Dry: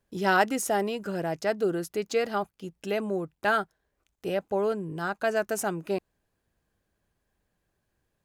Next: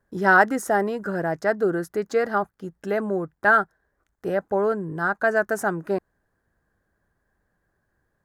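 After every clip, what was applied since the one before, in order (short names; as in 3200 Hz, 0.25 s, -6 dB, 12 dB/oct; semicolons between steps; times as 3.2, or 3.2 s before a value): resonant high shelf 2100 Hz -7 dB, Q 3; gain +4 dB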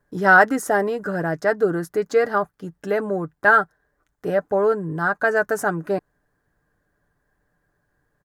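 comb 6.8 ms, depth 40%; gain +2 dB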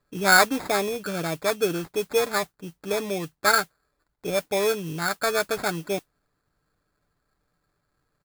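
sample-and-hold 15×; modulation noise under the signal 18 dB; gain -4.5 dB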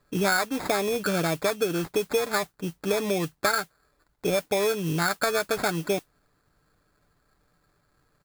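compressor 8:1, threshold -28 dBFS, peak gain reduction 16 dB; gain +6.5 dB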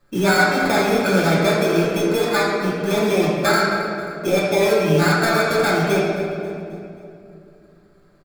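feedback echo 0.268 s, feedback 50%, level -18 dB; reverb RT60 2.7 s, pre-delay 3 ms, DRR -8 dB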